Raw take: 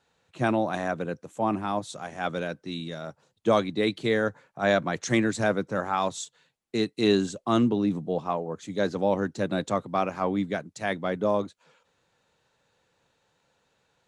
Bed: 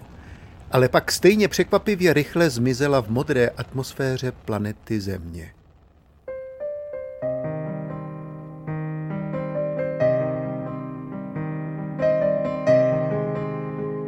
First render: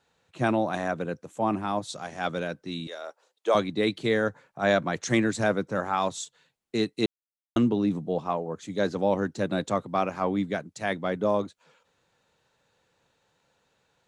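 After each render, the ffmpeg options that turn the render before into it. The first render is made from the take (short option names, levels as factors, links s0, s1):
-filter_complex "[0:a]asettb=1/sr,asplit=3[s0][s1][s2];[s0]atrim=end=1.884[s3];[s1]atrim=start=1.88:end=2.3,asetpts=PTS-STARTPTS,afade=t=in:d=0.004:c=qsin,afade=t=out:st=0.416:d=0.004:c=qsin,equalizer=f=4700:w=1.9:g=6.5[s4];[s2]atrim=start=2.296[s5];[s3][s4]acrossfade=d=0.004:c1=hsin:c2=qsin[s6];[s6][s5]acrossfade=d=0.004:c1=qsin:c2=hsin,asettb=1/sr,asplit=3[s7][s8][s9];[s7]atrim=end=2.874[s10];[s8]atrim=start=2.87:end=3.55,asetpts=PTS-STARTPTS,afade=t=in:d=0.004:c=qsin,afade=t=out:st=0.676:d=0.004:c=qsin,highpass=f=410:w=0.5412,highpass=f=410:w=1.3066[s11];[s9]atrim=start=3.546[s12];[s10][s11]acrossfade=d=0.004:c1=hsin:c2=qsin[s13];[s13][s12]acrossfade=d=0.004:c1=qsin:c2=hsin,asplit=3[s14][s15][s16];[s14]atrim=end=7.06,asetpts=PTS-STARTPTS,afade=t=out:st=7.056:d=0.004:c=hsin[s17];[s15]atrim=start=7.06:end=7.56,asetpts=PTS-STARTPTS,volume=0[s18];[s16]atrim=start=7.56,asetpts=PTS-STARTPTS,afade=t=in:d=0.004:c=hsin[s19];[s17][s18][s19]concat=n=3:v=0:a=1"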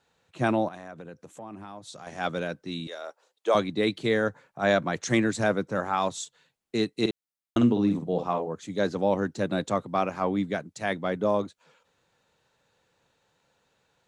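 -filter_complex "[0:a]asettb=1/sr,asplit=3[s0][s1][s2];[s0]atrim=end=0.684[s3];[s1]atrim=start=0.68:end=2.07,asetpts=PTS-STARTPTS,afade=t=in:d=0.004:c=qsin,afade=t=out:st=1.386:d=0.004:c=qsin,acompressor=threshold=0.01:ratio=4:attack=3.2:release=140:knee=1:detection=peak[s4];[s2]atrim=start=2.066[s5];[s3][s4]acrossfade=d=0.004:c1=hsin:c2=qsin[s6];[s6][s5]acrossfade=d=0.004:c1=qsin:c2=hsin,asettb=1/sr,asplit=3[s7][s8][s9];[s7]atrim=end=6.914[s10];[s8]atrim=start=6.91:end=8.48,asetpts=PTS-STARTPTS,afade=t=in:d=0.004:c=qsin,afade=t=out:st=1.566:d=0.004:c=qsin,asplit=2[s11][s12];[s12]adelay=50,volume=0.473[s13];[s11][s13]amix=inputs=2:normalize=0,atrim=end_sample=69237[s14];[s9]atrim=start=8.476[s15];[s10][s14]acrossfade=d=0.004:c1=hsin:c2=qsin[s16];[s16][s15]acrossfade=d=0.004:c1=qsin:c2=hsin"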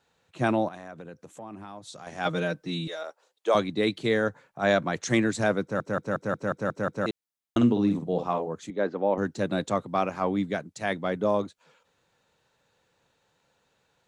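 -filter_complex "[0:a]asettb=1/sr,asplit=3[s0][s1][s2];[s0]atrim=end=2.254[s3];[s1]atrim=start=2.25:end=3.03,asetpts=PTS-STARTPTS,afade=t=in:d=0.004:c=qsin,afade=t=out:st=0.776:d=0.004:c=qsin,aecho=1:1:6.4:0.94,atrim=end_sample=34398[s4];[s2]atrim=start=3.026[s5];[s3][s4]acrossfade=d=0.004:c1=hsin:c2=qsin[s6];[s6][s5]acrossfade=d=0.004:c1=qsin:c2=hsin,asettb=1/sr,asplit=3[s7][s8][s9];[s7]atrim=end=8.704[s10];[s8]atrim=start=8.7:end=9.18,asetpts=PTS-STARTPTS,afade=t=in:d=0.004:c=qsin,afade=t=out:st=0.476:d=0.004:c=qsin,highpass=250,lowpass=2000[s11];[s9]atrim=start=9.176[s12];[s10][s11]acrossfade=d=0.004:c1=hsin:c2=qsin[s13];[s13][s12]acrossfade=d=0.004:c1=qsin:c2=hsin,asplit=9[s14][s15][s16][s17][s18][s19][s20][s21][s22];[s14]atrim=end=5.802[s23];[s15]atrim=start=5.618:end=5.802[s24];[s16]atrim=start=5.618:end=5.802[s25];[s17]atrim=start=5.618:end=5.802[s26];[s18]atrim=start=5.618:end=5.802[s27];[s19]atrim=start=5.618:end=5.802[s28];[s20]atrim=start=5.618:end=5.802[s29];[s21]atrim=start=5.618:end=5.802[s30];[s22]atrim=start=7.058[s31];[s23][s24]acrossfade=d=0.004:c1=hsin:c2=hsin[s32];[s32][s25]acrossfade=d=0.004:c1=hsin:c2=hsin[s33];[s33][s26]acrossfade=d=0.004:c1=hsin:c2=hsin[s34];[s34][s27]acrossfade=d=0.004:c1=hsin:c2=hsin[s35];[s35][s28]acrossfade=d=0.004:c1=hsin:c2=hsin[s36];[s36][s29]acrossfade=d=0.004:c1=hsin:c2=hsin[s37];[s37][s30]acrossfade=d=0.004:c1=hsin:c2=hsin[s38];[s38][s31]acrossfade=d=0.004:c1=hsin:c2=hsin"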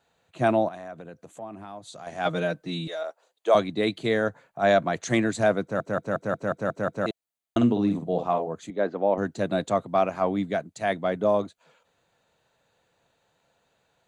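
-af "equalizer=f=670:w=6.7:g=8.5,bandreject=f=5400:w=7.1"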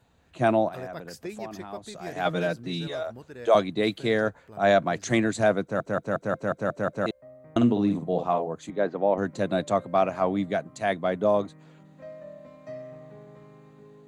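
-filter_complex "[1:a]volume=0.075[s0];[0:a][s0]amix=inputs=2:normalize=0"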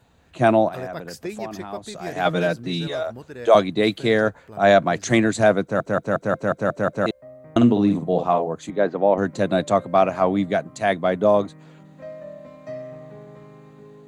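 -af "volume=1.88"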